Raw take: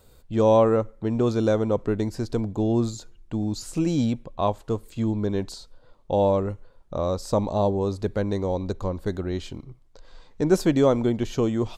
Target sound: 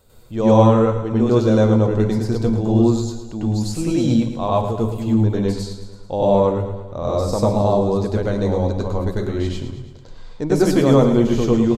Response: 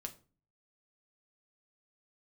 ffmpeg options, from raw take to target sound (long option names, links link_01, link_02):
-filter_complex "[0:a]aecho=1:1:110|220|330|440|550|660|770:0.282|0.163|0.0948|0.055|0.0319|0.0185|0.0107,asplit=2[link_01][link_02];[1:a]atrim=start_sample=2205,asetrate=33516,aresample=44100,adelay=97[link_03];[link_02][link_03]afir=irnorm=-1:irlink=0,volume=6.5dB[link_04];[link_01][link_04]amix=inputs=2:normalize=0,volume=-1dB"